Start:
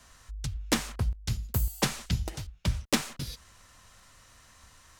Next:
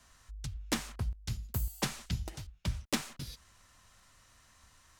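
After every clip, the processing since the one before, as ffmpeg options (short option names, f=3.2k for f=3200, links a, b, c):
-af "equalizer=f=490:t=o:w=0.35:g=-3,volume=-6dB"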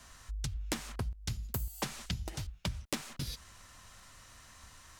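-af "acompressor=threshold=-40dB:ratio=8,volume=7dB"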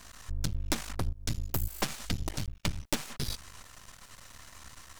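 -af "aeval=exprs='max(val(0),0)':c=same,volume=8.5dB"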